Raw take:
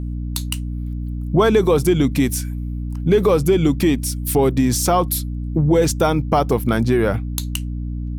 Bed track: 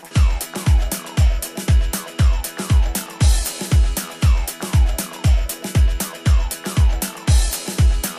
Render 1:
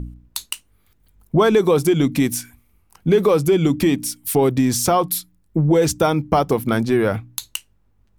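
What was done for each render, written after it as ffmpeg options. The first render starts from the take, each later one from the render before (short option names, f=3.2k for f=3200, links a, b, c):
-af "bandreject=f=60:t=h:w=4,bandreject=f=120:t=h:w=4,bandreject=f=180:t=h:w=4,bandreject=f=240:t=h:w=4,bandreject=f=300:t=h:w=4"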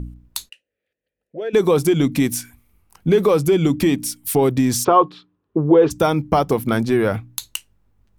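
-filter_complex "[0:a]asplit=3[a][b][c];[a]afade=t=out:st=0.48:d=0.02[d];[b]asplit=3[e][f][g];[e]bandpass=f=530:t=q:w=8,volume=0dB[h];[f]bandpass=f=1.84k:t=q:w=8,volume=-6dB[i];[g]bandpass=f=2.48k:t=q:w=8,volume=-9dB[j];[h][i][j]amix=inputs=3:normalize=0,afade=t=in:st=0.48:d=0.02,afade=t=out:st=1.53:d=0.02[k];[c]afade=t=in:st=1.53:d=0.02[l];[d][k][l]amix=inputs=3:normalize=0,asplit=3[m][n][o];[m]afade=t=out:st=4.83:d=0.02[p];[n]highpass=150,equalizer=f=190:t=q:w=4:g=-9,equalizer=f=290:t=q:w=4:g=3,equalizer=f=420:t=q:w=4:g=10,equalizer=f=1.1k:t=q:w=4:g=8,equalizer=f=2.1k:t=q:w=4:g=-8,lowpass=f=3.1k:w=0.5412,lowpass=f=3.1k:w=1.3066,afade=t=in:st=4.83:d=0.02,afade=t=out:st=5.9:d=0.02[q];[o]afade=t=in:st=5.9:d=0.02[r];[p][q][r]amix=inputs=3:normalize=0"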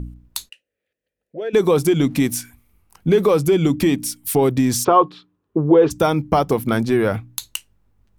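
-filter_complex "[0:a]asettb=1/sr,asplit=3[a][b][c];[a]atrim=end=1.944[d];[b]atrim=start=1.94:end=2.34,asetpts=PTS-STARTPTS,afade=t=in:d=0.004:c=qsin,afade=t=out:st=0.396:d=0.004:c=qsin,aeval=exprs='sgn(val(0))*max(abs(val(0))-0.00237,0)':c=same[e];[c]atrim=start=2.336[f];[d][e]acrossfade=d=0.004:c1=hsin:c2=qsin[g];[g][f]acrossfade=d=0.004:c1=qsin:c2=hsin"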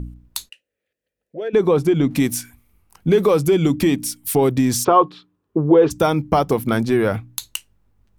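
-filter_complex "[0:a]asettb=1/sr,asplit=3[a][b][c];[a]atrim=end=1.484[d];[b]atrim=start=1.48:end=2.11,asetpts=PTS-STARTPTS,afade=t=in:d=0.004:c=qsin,afade=t=out:st=0.626:d=0.004:c=qsin,lowpass=f=2k:p=1[e];[c]atrim=start=2.106[f];[d][e]acrossfade=d=0.004:c1=hsin:c2=qsin[g];[g][f]acrossfade=d=0.004:c1=qsin:c2=hsin"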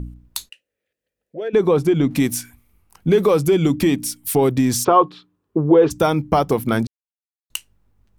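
-filter_complex "[0:a]asplit=3[a][b][c];[a]atrim=end=6.87,asetpts=PTS-STARTPTS,afade=t=out:st=6.866:d=0.004:c=hsin[d];[b]atrim=start=6.87:end=7.5,asetpts=PTS-STARTPTS,volume=0[e];[c]atrim=start=7.5,asetpts=PTS-STARTPTS,afade=t=in:d=0.004:c=hsin[f];[d][e][f]concat=n=3:v=0:a=1"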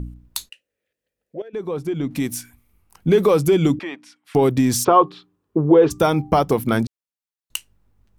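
-filter_complex "[0:a]asettb=1/sr,asplit=3[a][b][c];[a]atrim=end=3.794[d];[b]atrim=start=3.79:end=4.35,asetpts=PTS-STARTPTS,afade=t=in:d=0.004:c=qsin,afade=t=out:st=0.556:d=0.004:c=qsin,highpass=770,lowpass=2k[e];[c]atrim=start=4.346[f];[d][e]acrossfade=d=0.004:c1=hsin:c2=qsin[g];[g][f]acrossfade=d=0.004:c1=qsin:c2=hsin,asettb=1/sr,asplit=3[h][i][j];[h]atrim=end=5.014[k];[i]atrim=start=5.01:end=6.4,asetpts=PTS-STARTPTS,afade=t=in:d=0.004:c=qsin,afade=t=out:st=1.386:d=0.004:c=qsin,bandreject=f=393.2:t=h:w=4,bandreject=f=786.4:t=h:w=4,bandreject=f=1.1796k:t=h:w=4[l];[j]atrim=start=6.396[m];[k][l]acrossfade=d=0.004:c1=hsin:c2=qsin[n];[n][m]acrossfade=d=0.004:c1=qsin:c2=hsin,asplit=2[o][p];[o]atrim=end=1.42,asetpts=PTS-STARTPTS,afade=t=out:st=1.416:d=0.004:c=hsin:silence=0.158489[q];[p]atrim=start=1.42,asetpts=PTS-STARTPTS,afade=t=in:d=1.73:silence=0.158489[r];[q][r]concat=n=2:v=0:a=1"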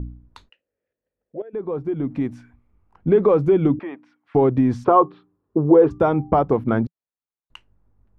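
-af "lowpass=1.3k,equalizer=f=170:t=o:w=0.25:g=-4"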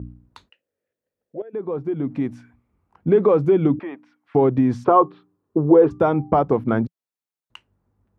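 -af "highpass=85"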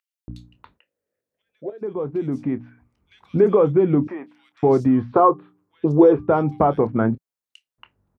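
-filter_complex "[0:a]asplit=2[a][b];[b]adelay=27,volume=-14dB[c];[a][c]amix=inputs=2:normalize=0,acrossover=split=2900[d][e];[d]adelay=280[f];[f][e]amix=inputs=2:normalize=0"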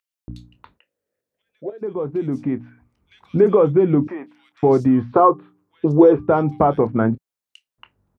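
-af "volume=1.5dB"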